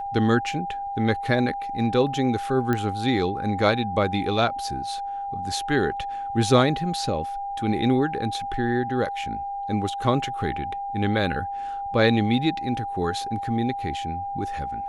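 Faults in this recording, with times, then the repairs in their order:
whine 800 Hz -28 dBFS
2.73 s: pop -12 dBFS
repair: de-click; band-stop 800 Hz, Q 30

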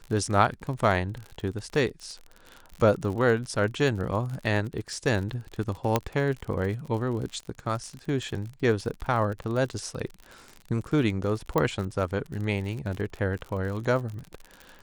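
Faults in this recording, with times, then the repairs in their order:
crackle 51 per s -33 dBFS
5.96 s: pop -8 dBFS
11.58 s: pop -12 dBFS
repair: de-click

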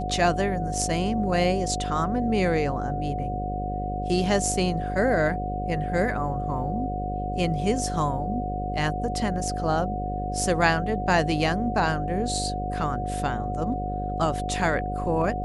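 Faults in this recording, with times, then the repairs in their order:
buzz 50 Hz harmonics 12 -31 dBFS
whine 730 Hz -30 dBFS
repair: de-hum 50 Hz, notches 12; band-stop 730 Hz, Q 30

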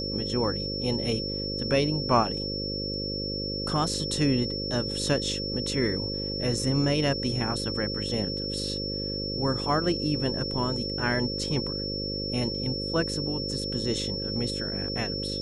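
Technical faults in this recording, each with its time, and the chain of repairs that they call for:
buzz 50 Hz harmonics 11 -34 dBFS
whine 5.4 kHz -32 dBFS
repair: de-hum 50 Hz, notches 11; band-stop 5.4 kHz, Q 30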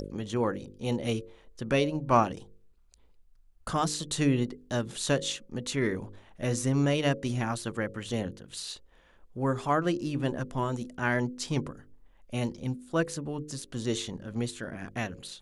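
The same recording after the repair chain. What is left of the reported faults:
nothing left

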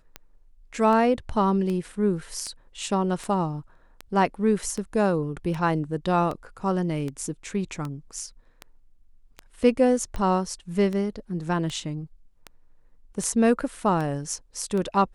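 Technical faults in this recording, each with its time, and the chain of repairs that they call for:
tick 78 rpm -19 dBFS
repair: de-click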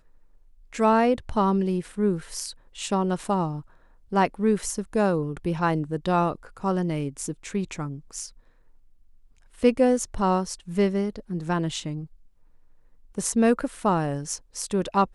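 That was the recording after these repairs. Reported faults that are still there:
nothing left

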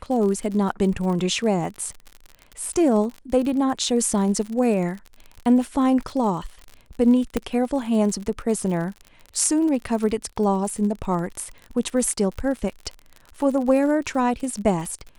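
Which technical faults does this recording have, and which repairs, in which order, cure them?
crackle 50 per s -30 dBFS
7.37 s: pop -9 dBFS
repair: de-click

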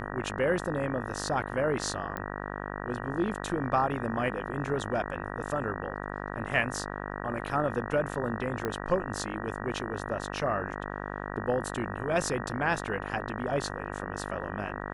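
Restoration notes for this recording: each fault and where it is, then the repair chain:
buzz 50 Hz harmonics 38 -37 dBFS
2.17 s: pop -21 dBFS
8.65 s: pop -18 dBFS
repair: de-click; de-hum 50 Hz, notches 38

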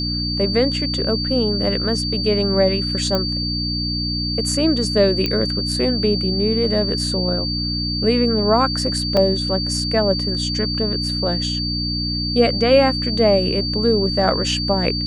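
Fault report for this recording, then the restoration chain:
hum 60 Hz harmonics 5 -25 dBFS
whine 4.6 kHz -23 dBFS
3.15 s: pop -8 dBFS
5.26 s: pop -8 dBFS
9.17 s: dropout 2 ms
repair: de-click; de-hum 60 Hz, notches 5; band-stop 4.6 kHz, Q 30; interpolate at 9.17 s, 2 ms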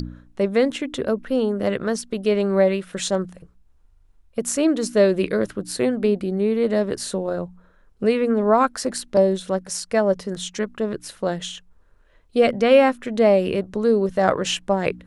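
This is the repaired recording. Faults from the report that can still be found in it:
nothing left

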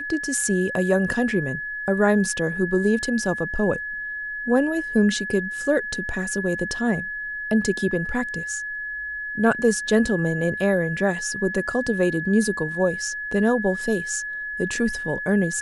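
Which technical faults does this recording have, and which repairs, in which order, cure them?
whine 1.7 kHz -28 dBFS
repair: band-stop 1.7 kHz, Q 30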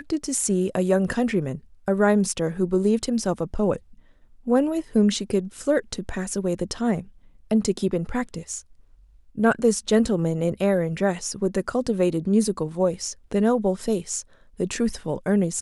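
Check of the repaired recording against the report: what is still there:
nothing left

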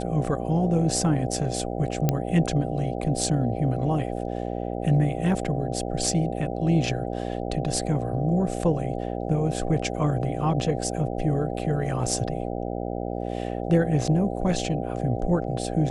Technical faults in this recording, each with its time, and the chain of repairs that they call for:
buzz 60 Hz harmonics 13 -30 dBFS
2.09 s: pop -8 dBFS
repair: de-click; de-hum 60 Hz, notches 13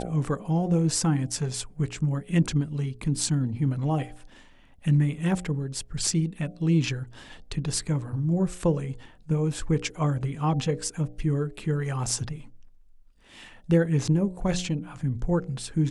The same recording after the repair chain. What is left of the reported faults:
nothing left

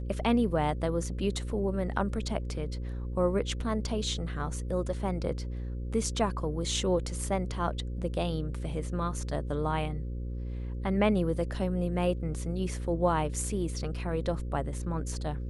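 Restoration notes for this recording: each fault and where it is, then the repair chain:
buzz 60 Hz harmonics 9 -35 dBFS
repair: de-hum 60 Hz, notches 9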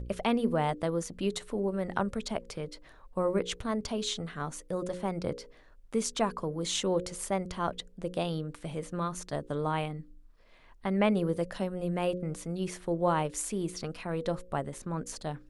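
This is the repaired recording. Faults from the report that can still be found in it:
nothing left

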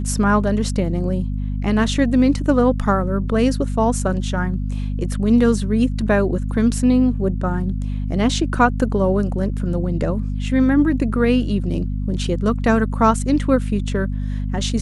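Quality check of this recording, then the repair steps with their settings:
hum 50 Hz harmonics 5 -23 dBFS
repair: de-hum 50 Hz, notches 5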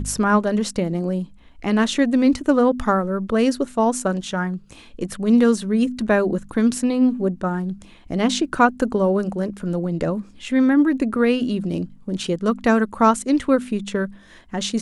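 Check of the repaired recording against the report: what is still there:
nothing left

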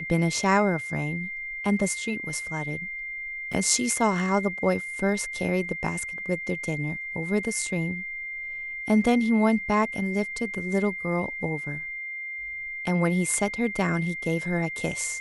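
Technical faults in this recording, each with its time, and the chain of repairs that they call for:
whine 2.1 kHz -32 dBFS
3.53–3.54 s: dropout 5.4 ms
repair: band-stop 2.1 kHz, Q 30; interpolate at 3.53 s, 5.4 ms

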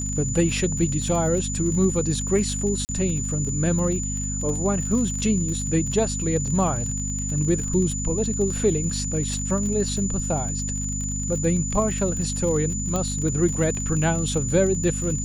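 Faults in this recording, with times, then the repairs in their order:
crackle 42 per s -29 dBFS
hum 50 Hz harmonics 5 -29 dBFS
whine 7 kHz -29 dBFS
2.85–2.89 s: dropout 39 ms
12.96 s: pop -13 dBFS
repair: de-click; band-stop 7 kHz, Q 30; de-hum 50 Hz, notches 5; interpolate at 2.85 s, 39 ms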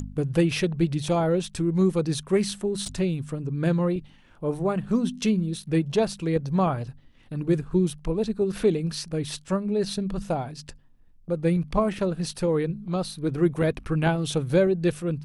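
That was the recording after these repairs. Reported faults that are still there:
12.96 s: pop

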